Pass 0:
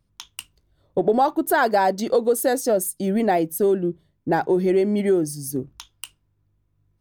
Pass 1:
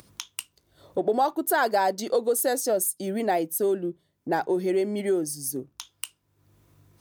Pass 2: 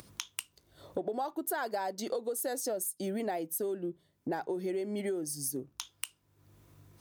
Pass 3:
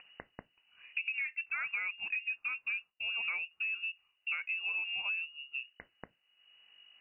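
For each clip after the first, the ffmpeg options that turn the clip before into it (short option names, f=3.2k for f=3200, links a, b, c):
-af "acompressor=mode=upward:threshold=-27dB:ratio=2.5,highpass=80,bass=f=250:g=-7,treble=f=4k:g=5,volume=-4dB"
-af "acompressor=threshold=-32dB:ratio=6"
-af "lowpass=f=2.6k:t=q:w=0.5098,lowpass=f=2.6k:t=q:w=0.6013,lowpass=f=2.6k:t=q:w=0.9,lowpass=f=2.6k:t=q:w=2.563,afreqshift=-3000,volume=-2dB"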